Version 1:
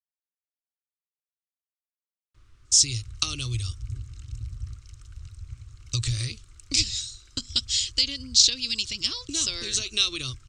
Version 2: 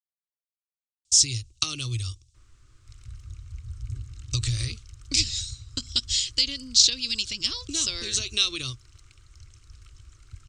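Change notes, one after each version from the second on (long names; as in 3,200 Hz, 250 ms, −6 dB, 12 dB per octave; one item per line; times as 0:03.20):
speech: entry −1.60 s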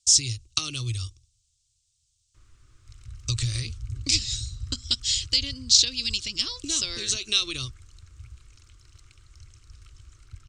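speech: entry −1.05 s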